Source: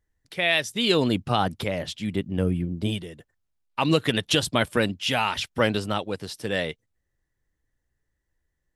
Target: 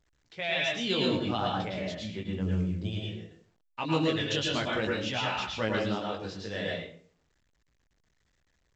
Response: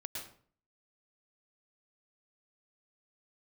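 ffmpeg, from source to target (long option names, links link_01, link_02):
-filter_complex "[0:a]flanger=delay=16:depth=5.2:speed=0.57[link_01];[1:a]atrim=start_sample=2205[link_02];[link_01][link_02]afir=irnorm=-1:irlink=0,volume=-2dB" -ar 16000 -c:a pcm_alaw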